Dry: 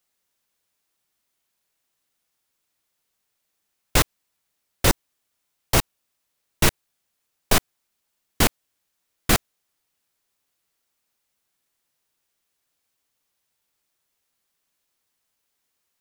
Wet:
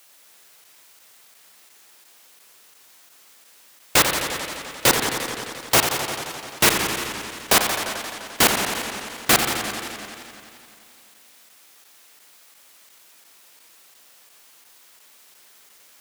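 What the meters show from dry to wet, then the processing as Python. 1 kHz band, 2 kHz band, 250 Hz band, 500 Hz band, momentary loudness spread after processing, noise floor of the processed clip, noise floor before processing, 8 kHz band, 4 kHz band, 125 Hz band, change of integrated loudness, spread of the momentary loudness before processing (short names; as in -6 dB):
+6.0 dB, +6.5 dB, +0.5 dB, +3.5 dB, 14 LU, -53 dBFS, -77 dBFS, +6.0 dB, +6.5 dB, -5.5 dB, +2.0 dB, 5 LU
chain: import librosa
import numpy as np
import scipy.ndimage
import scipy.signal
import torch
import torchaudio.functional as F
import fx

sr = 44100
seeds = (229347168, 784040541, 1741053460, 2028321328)

p1 = fx.quant_dither(x, sr, seeds[0], bits=8, dither='triangular')
p2 = x + F.gain(torch.from_numpy(p1), -6.0).numpy()
p3 = fx.highpass(p2, sr, hz=460.0, slope=6)
p4 = p3 + fx.echo_feedback(p3, sr, ms=180, feedback_pct=54, wet_db=-18.5, dry=0)
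p5 = fx.rev_spring(p4, sr, rt60_s=1.9, pass_ms=(39,), chirp_ms=25, drr_db=7.5)
p6 = fx.buffer_crackle(p5, sr, first_s=0.64, period_s=0.35, block=512, kind='zero')
p7 = fx.echo_warbled(p6, sr, ms=87, feedback_pct=79, rate_hz=2.8, cents=198, wet_db=-8)
y = F.gain(torch.from_numpy(p7), 1.0).numpy()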